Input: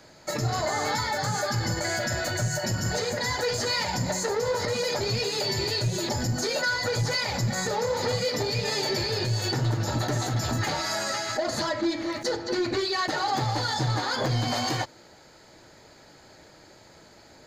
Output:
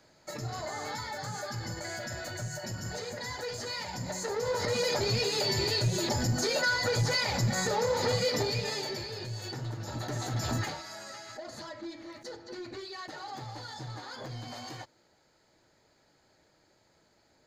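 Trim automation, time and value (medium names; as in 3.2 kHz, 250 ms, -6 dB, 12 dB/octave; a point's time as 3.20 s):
3.94 s -10 dB
4.78 s -1.5 dB
8.39 s -1.5 dB
9.10 s -11.5 dB
9.81 s -11.5 dB
10.57 s -3 dB
10.84 s -15 dB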